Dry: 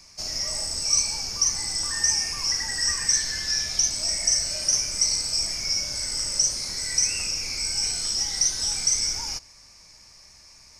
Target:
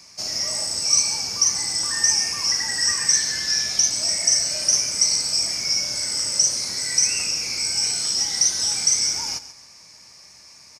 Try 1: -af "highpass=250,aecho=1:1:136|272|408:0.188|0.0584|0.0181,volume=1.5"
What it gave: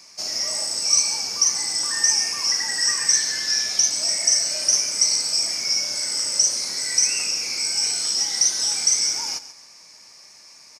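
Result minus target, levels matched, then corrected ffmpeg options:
125 Hz band -9.0 dB
-af "highpass=120,aecho=1:1:136|272|408:0.188|0.0584|0.0181,volume=1.5"

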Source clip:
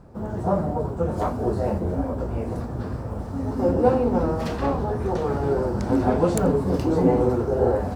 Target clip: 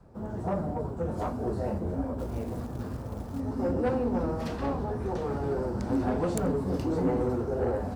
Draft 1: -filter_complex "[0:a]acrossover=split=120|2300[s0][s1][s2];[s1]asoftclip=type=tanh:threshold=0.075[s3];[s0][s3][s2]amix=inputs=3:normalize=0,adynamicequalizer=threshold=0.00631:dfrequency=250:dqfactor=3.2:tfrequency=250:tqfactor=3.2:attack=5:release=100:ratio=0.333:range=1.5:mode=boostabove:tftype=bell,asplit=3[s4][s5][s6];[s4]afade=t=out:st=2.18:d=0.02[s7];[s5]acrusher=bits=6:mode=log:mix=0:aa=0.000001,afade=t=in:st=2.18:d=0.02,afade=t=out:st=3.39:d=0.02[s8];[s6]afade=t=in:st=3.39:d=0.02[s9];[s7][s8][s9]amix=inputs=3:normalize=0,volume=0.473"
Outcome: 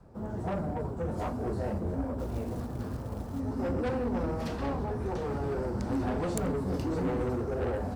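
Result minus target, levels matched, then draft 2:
saturation: distortion +6 dB
-filter_complex "[0:a]acrossover=split=120|2300[s0][s1][s2];[s1]asoftclip=type=tanh:threshold=0.168[s3];[s0][s3][s2]amix=inputs=3:normalize=0,adynamicequalizer=threshold=0.00631:dfrequency=250:dqfactor=3.2:tfrequency=250:tqfactor=3.2:attack=5:release=100:ratio=0.333:range=1.5:mode=boostabove:tftype=bell,asplit=3[s4][s5][s6];[s4]afade=t=out:st=2.18:d=0.02[s7];[s5]acrusher=bits=6:mode=log:mix=0:aa=0.000001,afade=t=in:st=2.18:d=0.02,afade=t=out:st=3.39:d=0.02[s8];[s6]afade=t=in:st=3.39:d=0.02[s9];[s7][s8][s9]amix=inputs=3:normalize=0,volume=0.473"

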